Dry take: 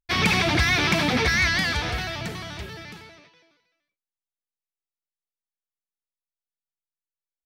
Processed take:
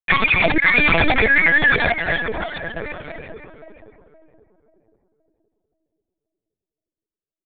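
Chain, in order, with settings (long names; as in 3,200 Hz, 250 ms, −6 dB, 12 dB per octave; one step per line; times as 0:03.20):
spectral envelope exaggerated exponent 3
noise gate −53 dBFS, range −13 dB
high-pass filter 510 Hz 12 dB per octave
comb filter 2.9 ms, depth 90%
in parallel at +3 dB: downward compressor 5 to 1, threshold −29 dBFS, peak gain reduction 13.5 dB
on the sum: hard clipping −18 dBFS, distortion −10 dB
feedback echo with a low-pass in the loop 527 ms, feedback 44%, low-pass 890 Hz, level −4.5 dB
linear-prediction vocoder at 8 kHz pitch kept
level +7 dB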